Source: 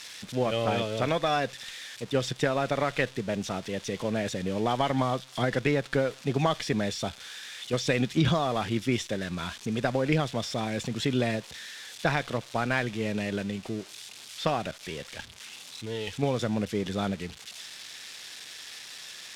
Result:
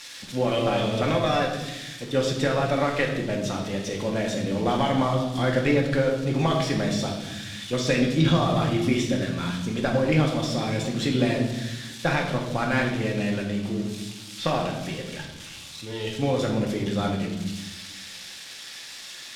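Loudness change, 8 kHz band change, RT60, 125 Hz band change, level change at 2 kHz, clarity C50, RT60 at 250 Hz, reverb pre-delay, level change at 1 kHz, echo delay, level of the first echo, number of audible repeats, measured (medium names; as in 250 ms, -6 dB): +4.0 dB, +3.0 dB, 1.1 s, +5.5 dB, +3.0 dB, 5.0 dB, 1.7 s, 4 ms, +2.5 dB, no echo, no echo, no echo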